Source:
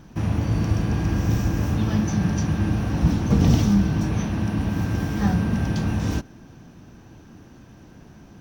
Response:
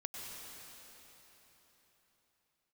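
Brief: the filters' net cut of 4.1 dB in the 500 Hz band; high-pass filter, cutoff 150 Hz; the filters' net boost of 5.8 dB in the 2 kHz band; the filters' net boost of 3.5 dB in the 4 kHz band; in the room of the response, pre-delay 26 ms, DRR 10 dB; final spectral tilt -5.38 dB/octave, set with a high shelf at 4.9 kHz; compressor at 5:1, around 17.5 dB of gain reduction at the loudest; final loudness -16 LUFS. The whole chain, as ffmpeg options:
-filter_complex "[0:a]highpass=150,equalizer=f=500:t=o:g=-6,equalizer=f=2000:t=o:g=8,equalizer=f=4000:t=o:g=4.5,highshelf=f=4900:g=-5.5,acompressor=threshold=0.0141:ratio=5,asplit=2[s0][s1];[1:a]atrim=start_sample=2205,adelay=26[s2];[s1][s2]afir=irnorm=-1:irlink=0,volume=0.335[s3];[s0][s3]amix=inputs=2:normalize=0,volume=15"

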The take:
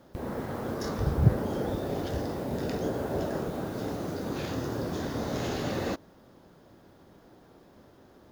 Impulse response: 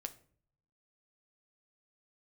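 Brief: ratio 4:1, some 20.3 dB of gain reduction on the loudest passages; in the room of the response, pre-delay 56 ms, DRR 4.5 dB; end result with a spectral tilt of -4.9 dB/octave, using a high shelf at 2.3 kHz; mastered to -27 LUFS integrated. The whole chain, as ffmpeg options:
-filter_complex "[0:a]highshelf=f=2300:g=8.5,acompressor=threshold=0.01:ratio=4,asplit=2[s0][s1];[1:a]atrim=start_sample=2205,adelay=56[s2];[s1][s2]afir=irnorm=-1:irlink=0,volume=0.841[s3];[s0][s3]amix=inputs=2:normalize=0,volume=4.73"

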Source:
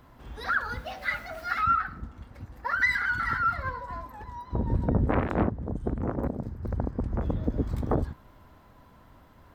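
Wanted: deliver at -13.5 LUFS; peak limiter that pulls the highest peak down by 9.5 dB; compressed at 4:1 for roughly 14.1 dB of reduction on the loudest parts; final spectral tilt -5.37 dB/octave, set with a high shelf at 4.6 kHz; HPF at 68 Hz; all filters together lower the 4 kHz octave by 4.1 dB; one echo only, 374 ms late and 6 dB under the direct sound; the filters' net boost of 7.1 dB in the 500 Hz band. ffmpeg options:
-af "highpass=68,equalizer=f=500:t=o:g=8.5,equalizer=f=4000:t=o:g=-8.5,highshelf=f=4600:g=7,acompressor=threshold=0.0178:ratio=4,alimiter=level_in=1.78:limit=0.0631:level=0:latency=1,volume=0.562,aecho=1:1:374:0.501,volume=18.8"

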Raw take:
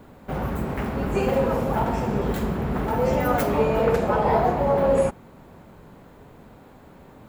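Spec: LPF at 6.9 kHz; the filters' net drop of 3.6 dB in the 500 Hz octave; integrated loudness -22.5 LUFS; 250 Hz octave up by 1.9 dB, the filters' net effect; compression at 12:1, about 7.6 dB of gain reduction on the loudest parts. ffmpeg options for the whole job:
-af "lowpass=6900,equalizer=f=250:t=o:g=3.5,equalizer=f=500:t=o:g=-5,acompressor=threshold=0.0562:ratio=12,volume=2.37"

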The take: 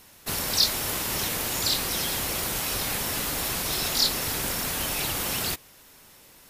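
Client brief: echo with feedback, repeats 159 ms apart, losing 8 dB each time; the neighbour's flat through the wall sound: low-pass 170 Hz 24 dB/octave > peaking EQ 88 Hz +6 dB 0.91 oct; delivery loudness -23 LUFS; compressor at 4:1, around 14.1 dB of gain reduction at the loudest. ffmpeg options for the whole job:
-af "acompressor=threshold=0.0178:ratio=4,lowpass=f=170:w=0.5412,lowpass=f=170:w=1.3066,equalizer=f=88:t=o:w=0.91:g=6,aecho=1:1:159|318|477|636|795:0.398|0.159|0.0637|0.0255|0.0102,volume=16.8"

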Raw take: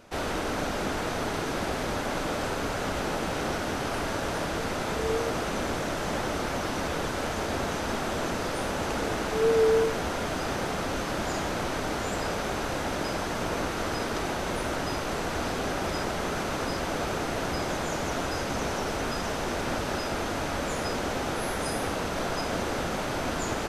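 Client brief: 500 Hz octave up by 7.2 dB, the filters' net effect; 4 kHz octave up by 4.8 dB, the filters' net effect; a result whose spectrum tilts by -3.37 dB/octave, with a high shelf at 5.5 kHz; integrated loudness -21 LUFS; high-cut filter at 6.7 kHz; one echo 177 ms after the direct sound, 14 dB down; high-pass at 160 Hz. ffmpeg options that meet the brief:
-af "highpass=160,lowpass=6700,equalizer=f=500:t=o:g=8.5,equalizer=f=4000:t=o:g=4,highshelf=f=5500:g=6.5,aecho=1:1:177:0.2,volume=1.58"

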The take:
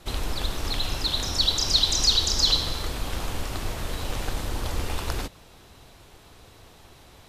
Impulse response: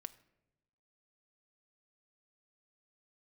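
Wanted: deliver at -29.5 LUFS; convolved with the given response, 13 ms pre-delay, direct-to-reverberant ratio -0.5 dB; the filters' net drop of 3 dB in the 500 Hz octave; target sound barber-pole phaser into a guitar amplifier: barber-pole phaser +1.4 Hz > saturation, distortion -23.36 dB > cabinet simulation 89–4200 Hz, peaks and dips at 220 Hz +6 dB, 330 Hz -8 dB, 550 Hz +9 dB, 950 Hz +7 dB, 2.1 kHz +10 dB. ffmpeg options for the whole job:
-filter_complex "[0:a]equalizer=f=500:t=o:g=-9,asplit=2[s0][s1];[1:a]atrim=start_sample=2205,adelay=13[s2];[s1][s2]afir=irnorm=-1:irlink=0,volume=1.78[s3];[s0][s3]amix=inputs=2:normalize=0,asplit=2[s4][s5];[s5]afreqshift=1.4[s6];[s4][s6]amix=inputs=2:normalize=1,asoftclip=threshold=0.335,highpass=89,equalizer=f=220:t=q:w=4:g=6,equalizer=f=330:t=q:w=4:g=-8,equalizer=f=550:t=q:w=4:g=9,equalizer=f=950:t=q:w=4:g=7,equalizer=f=2100:t=q:w=4:g=10,lowpass=f=4200:w=0.5412,lowpass=f=4200:w=1.3066,volume=0.794"

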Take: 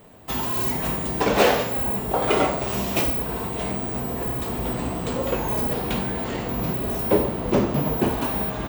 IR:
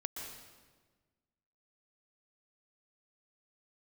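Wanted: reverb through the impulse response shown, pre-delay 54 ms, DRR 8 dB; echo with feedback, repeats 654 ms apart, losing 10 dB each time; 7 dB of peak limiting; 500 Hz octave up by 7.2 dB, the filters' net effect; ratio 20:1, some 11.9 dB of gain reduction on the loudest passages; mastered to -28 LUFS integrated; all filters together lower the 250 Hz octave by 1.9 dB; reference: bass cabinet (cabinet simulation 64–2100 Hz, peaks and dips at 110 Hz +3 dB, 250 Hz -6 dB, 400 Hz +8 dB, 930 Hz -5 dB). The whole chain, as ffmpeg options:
-filter_complex "[0:a]equalizer=f=250:t=o:g=-6.5,equalizer=f=500:t=o:g=6.5,acompressor=threshold=0.0891:ratio=20,alimiter=limit=0.126:level=0:latency=1,aecho=1:1:654|1308|1962|2616:0.316|0.101|0.0324|0.0104,asplit=2[s0][s1];[1:a]atrim=start_sample=2205,adelay=54[s2];[s1][s2]afir=irnorm=-1:irlink=0,volume=0.398[s3];[s0][s3]amix=inputs=2:normalize=0,highpass=f=64:w=0.5412,highpass=f=64:w=1.3066,equalizer=f=110:t=q:w=4:g=3,equalizer=f=250:t=q:w=4:g=-6,equalizer=f=400:t=q:w=4:g=8,equalizer=f=930:t=q:w=4:g=-5,lowpass=f=2100:w=0.5412,lowpass=f=2100:w=1.3066,volume=0.841"

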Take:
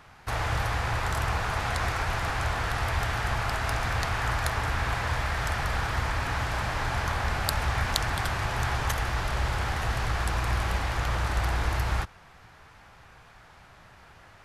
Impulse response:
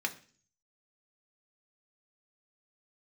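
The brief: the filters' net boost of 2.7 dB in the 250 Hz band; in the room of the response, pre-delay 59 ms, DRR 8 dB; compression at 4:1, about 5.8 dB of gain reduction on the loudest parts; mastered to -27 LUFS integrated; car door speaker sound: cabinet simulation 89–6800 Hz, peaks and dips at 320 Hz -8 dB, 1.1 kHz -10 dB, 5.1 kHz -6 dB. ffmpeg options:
-filter_complex "[0:a]equalizer=f=250:t=o:g=7,acompressor=threshold=0.0398:ratio=4,asplit=2[s0][s1];[1:a]atrim=start_sample=2205,adelay=59[s2];[s1][s2]afir=irnorm=-1:irlink=0,volume=0.237[s3];[s0][s3]amix=inputs=2:normalize=0,highpass=89,equalizer=f=320:t=q:w=4:g=-8,equalizer=f=1100:t=q:w=4:g=-10,equalizer=f=5100:t=q:w=4:g=-6,lowpass=f=6800:w=0.5412,lowpass=f=6800:w=1.3066,volume=2.37"

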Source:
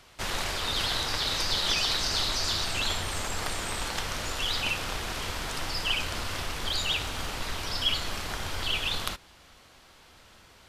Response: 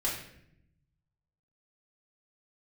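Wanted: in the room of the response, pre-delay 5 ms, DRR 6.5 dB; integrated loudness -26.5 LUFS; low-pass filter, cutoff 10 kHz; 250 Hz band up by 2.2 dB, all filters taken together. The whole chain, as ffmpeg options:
-filter_complex "[0:a]lowpass=10000,equalizer=f=250:t=o:g=3,asplit=2[s0][s1];[1:a]atrim=start_sample=2205,adelay=5[s2];[s1][s2]afir=irnorm=-1:irlink=0,volume=0.237[s3];[s0][s3]amix=inputs=2:normalize=0,volume=1.26"

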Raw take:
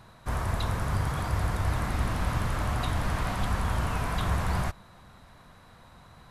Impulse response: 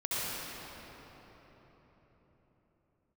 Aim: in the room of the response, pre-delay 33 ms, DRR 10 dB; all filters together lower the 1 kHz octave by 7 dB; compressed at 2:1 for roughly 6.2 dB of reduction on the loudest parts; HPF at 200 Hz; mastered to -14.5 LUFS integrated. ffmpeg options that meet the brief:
-filter_complex "[0:a]highpass=200,equalizer=f=1000:t=o:g=-9,acompressor=threshold=0.00631:ratio=2,asplit=2[s0][s1];[1:a]atrim=start_sample=2205,adelay=33[s2];[s1][s2]afir=irnorm=-1:irlink=0,volume=0.126[s3];[s0][s3]amix=inputs=2:normalize=0,volume=25.1"

